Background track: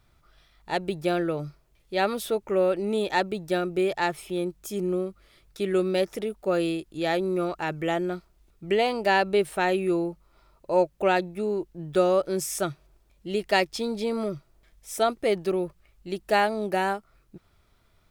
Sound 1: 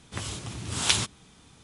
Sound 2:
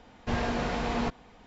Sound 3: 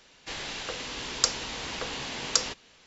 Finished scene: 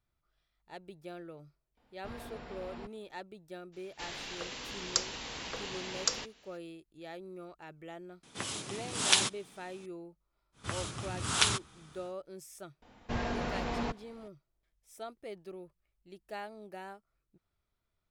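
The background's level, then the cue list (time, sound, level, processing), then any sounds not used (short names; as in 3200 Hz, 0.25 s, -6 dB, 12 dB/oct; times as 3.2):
background track -20 dB
1.77 add 2 -17 dB + notch 6300 Hz, Q 5.3
3.72 add 3 -6 dB, fades 0.02 s
8.23 add 1 -1.5 dB + HPF 200 Hz
10.52 add 1 -4 dB, fades 0.10 s + bell 1300 Hz +7.5 dB 0.65 oct
12.82 add 2 -5 dB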